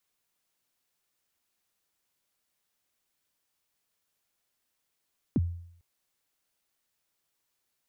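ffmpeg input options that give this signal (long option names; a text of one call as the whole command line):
ffmpeg -f lavfi -i "aevalsrc='0.106*pow(10,-3*t/0.66)*sin(2*PI*(330*0.034/log(86/330)*(exp(log(86/330)*min(t,0.034)/0.034)-1)+86*max(t-0.034,0)))':duration=0.45:sample_rate=44100" out.wav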